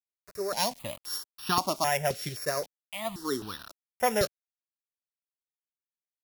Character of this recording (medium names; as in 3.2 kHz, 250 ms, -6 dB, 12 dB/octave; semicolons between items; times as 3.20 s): a buzz of ramps at a fixed pitch in blocks of 8 samples; random-step tremolo; a quantiser's noise floor 8-bit, dither none; notches that jump at a steady rate 3.8 Hz 260–2100 Hz